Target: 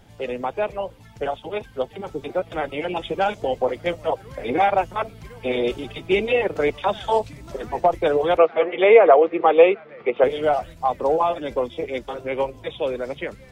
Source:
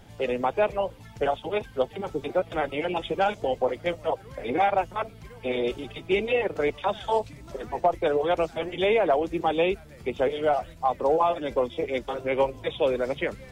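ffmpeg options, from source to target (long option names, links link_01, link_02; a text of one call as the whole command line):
ffmpeg -i in.wav -filter_complex "[0:a]dynaudnorm=framelen=690:gausssize=9:maxgain=5.5dB,asettb=1/sr,asplit=3[link_01][link_02][link_03];[link_01]atrim=end=8.374[link_04];[link_02]atrim=start=8.37:end=10.24,asetpts=PTS-STARTPTS,afade=type=in:duration=0.004:curve=qsin,afade=type=out:start_time=1.866:duration=0.004:curve=qsin,highpass=frequency=170:width=0.5412,highpass=frequency=170:width=1.3066,equalizer=frequency=170:width_type=q:width=4:gain=-9,equalizer=frequency=260:width_type=q:width=4:gain=-6,equalizer=frequency=480:width_type=q:width=4:gain=9,equalizer=frequency=700:width_type=q:width=4:gain=4,equalizer=frequency=1200:width_type=q:width=4:gain=9,equalizer=frequency=2100:width_type=q:width=4:gain=5,lowpass=frequency=3000:width=0.5412,lowpass=frequency=3000:width=1.3066[link_05];[link_03]atrim=start=10.236[link_06];[link_04][link_05]acrossfade=duration=0.004:curve1=hsin:curve2=qsin[link_07];[link_07][link_06]acrossfade=duration=0.004:curve1=qsin:curve2=hsin,volume=-1dB" out.wav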